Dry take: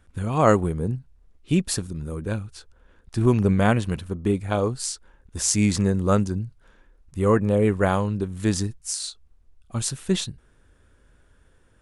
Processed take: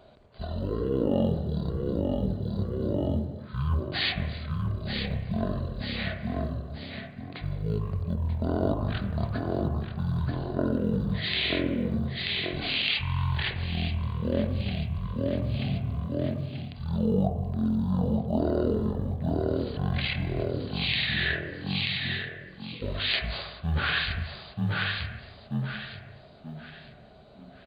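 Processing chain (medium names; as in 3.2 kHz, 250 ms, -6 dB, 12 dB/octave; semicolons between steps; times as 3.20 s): frequency-shifting echo 399 ms, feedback 32%, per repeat +59 Hz, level -9.5 dB; wide varispeed 0.427×; reverse; compression 8:1, threshold -33 dBFS, peak gain reduction 22 dB; reverse; high-pass 83 Hz 12 dB/octave; short-mantissa float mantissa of 6-bit; small resonant body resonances 400/610 Hz, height 7 dB, ringing for 30 ms; on a send at -5 dB: low-pass 2.5 kHz 24 dB/octave + reverberation, pre-delay 3 ms; on the sum: trim +8.5 dB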